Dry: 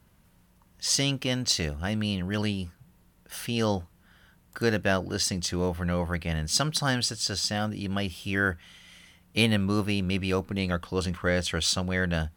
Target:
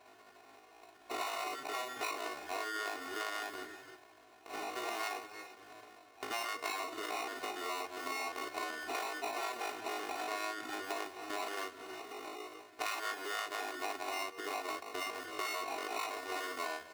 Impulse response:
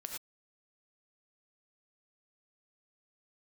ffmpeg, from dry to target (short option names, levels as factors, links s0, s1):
-filter_complex "[0:a]equalizer=f=2100:t=o:w=0.44:g=4.5,acrusher=samples=27:mix=1:aa=0.000001,aecho=1:1:19|38:0.668|0.708,asplit=2[s0][s1];[1:a]atrim=start_sample=2205,adelay=131[s2];[s1][s2]afir=irnorm=-1:irlink=0,volume=0.15[s3];[s0][s3]amix=inputs=2:normalize=0,afftfilt=real='re*lt(hypot(re,im),0.251)':imag='im*lt(hypot(re,im),0.251)':win_size=1024:overlap=0.75,atempo=0.73,highpass=550,acompressor=threshold=0.00355:ratio=3,highshelf=f=5300:g=-7,aecho=1:1:2.8:0.96,volume=2.11"